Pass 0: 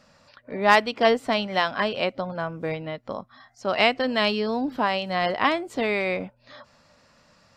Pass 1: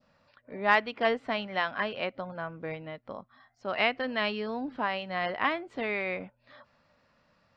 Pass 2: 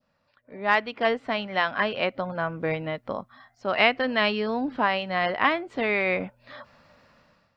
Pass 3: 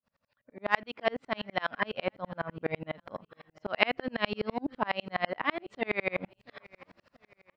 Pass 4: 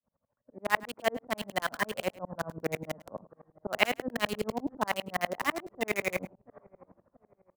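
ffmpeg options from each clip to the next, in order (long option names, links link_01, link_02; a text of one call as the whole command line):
ffmpeg -i in.wav -af "lowpass=3600,adynamicequalizer=threshold=0.0178:dfrequency=1800:dqfactor=0.98:tfrequency=1800:tqfactor=0.98:attack=5:release=100:ratio=0.375:range=2.5:mode=boostabove:tftype=bell,volume=-8.5dB" out.wav
ffmpeg -i in.wav -af "dynaudnorm=framelen=240:gausssize=5:maxgain=16dB,volume=-5.5dB" out.wav
ffmpeg -i in.wav -af "aecho=1:1:683|1366|2049:0.0708|0.0283|0.0113,aeval=exprs='val(0)*pow(10,-38*if(lt(mod(-12*n/s,1),2*abs(-12)/1000),1-mod(-12*n/s,1)/(2*abs(-12)/1000),(mod(-12*n/s,1)-2*abs(-12)/1000)/(1-2*abs(-12)/1000))/20)':channel_layout=same,volume=2dB" out.wav
ffmpeg -i in.wav -filter_complex "[0:a]acrossover=split=240|820|1000[link_01][link_02][link_03][link_04];[link_04]acrusher=bits=5:mix=0:aa=0.000001[link_05];[link_01][link_02][link_03][link_05]amix=inputs=4:normalize=0,aecho=1:1:103:0.1" out.wav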